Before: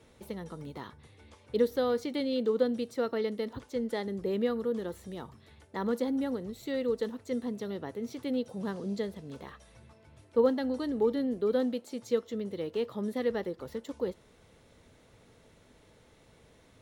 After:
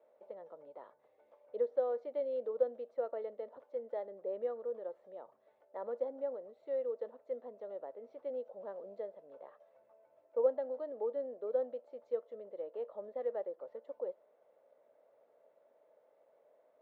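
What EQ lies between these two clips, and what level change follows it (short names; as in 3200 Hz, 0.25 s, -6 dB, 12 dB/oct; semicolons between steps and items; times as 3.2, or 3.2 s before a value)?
ladder band-pass 630 Hz, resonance 75%; +2.0 dB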